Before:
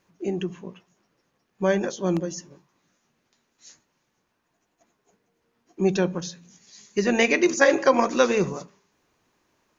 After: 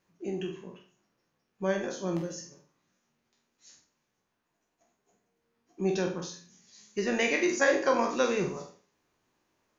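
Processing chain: spectral sustain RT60 0.38 s; flutter echo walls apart 8.1 m, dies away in 0.34 s; trim -8.5 dB

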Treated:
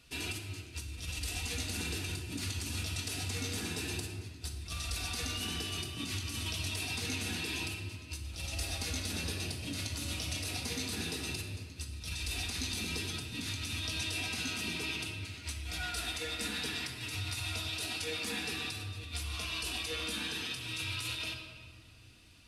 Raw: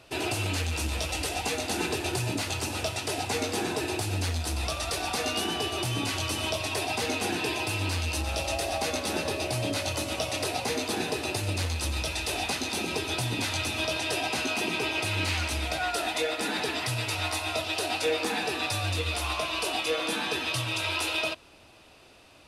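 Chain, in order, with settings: amplifier tone stack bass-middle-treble 6-0-2; compressor with a negative ratio -48 dBFS, ratio -0.5; simulated room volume 2900 m³, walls mixed, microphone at 1.8 m; trim +8.5 dB

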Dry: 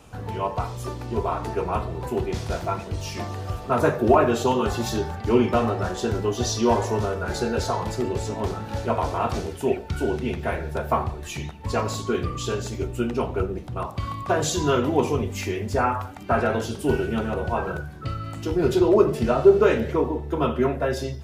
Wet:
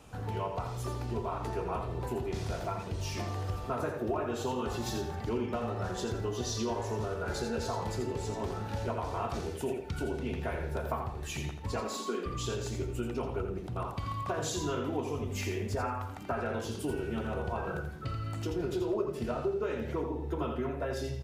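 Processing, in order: 11.76–12.26 s: steep high-pass 180 Hz 96 dB/octave; compression 4:1, threshold -27 dBFS, peak gain reduction 15.5 dB; feedback delay 84 ms, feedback 25%, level -7 dB; trim -5 dB

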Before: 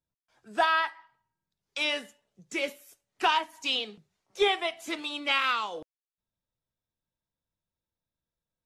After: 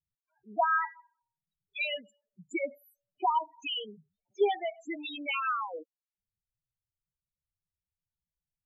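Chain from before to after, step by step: 0.91–2.62 s: transient shaper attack +3 dB, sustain -4 dB; loudest bins only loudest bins 4

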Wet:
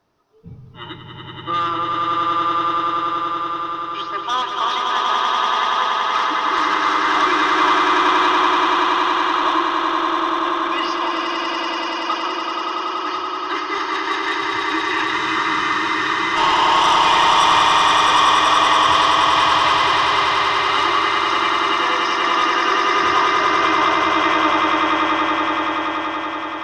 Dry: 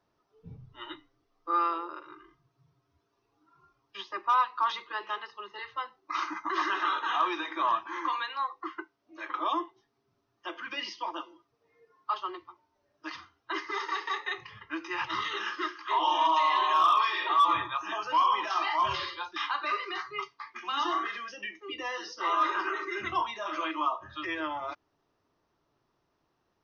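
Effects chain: sine folder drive 5 dB, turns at -17 dBFS; echo with a slow build-up 95 ms, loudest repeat 8, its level -4 dB; spectral freeze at 15.15 s, 1.22 s

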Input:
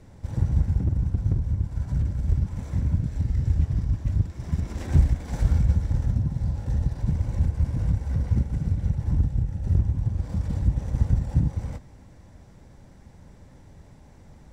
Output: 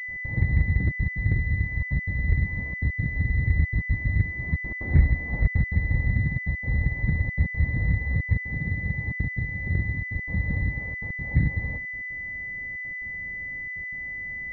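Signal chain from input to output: 10.66–11.31 s: tilt EQ +2 dB/octave; trance gate ".x.xxxxxxxx" 181 bpm -60 dB; 8.44–10.16 s: bass shelf 70 Hz -11 dB; class-D stage that switches slowly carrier 2 kHz

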